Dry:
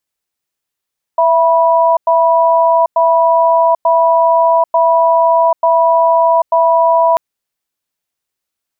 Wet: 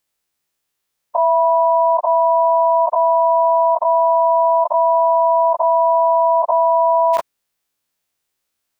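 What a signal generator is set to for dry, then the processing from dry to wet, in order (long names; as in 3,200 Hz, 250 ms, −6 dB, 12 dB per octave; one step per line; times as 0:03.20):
tone pair in a cadence 664 Hz, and 978 Hz, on 0.79 s, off 0.10 s, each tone −10 dBFS 5.99 s
every bin's largest magnitude spread in time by 60 ms
brickwall limiter −8 dBFS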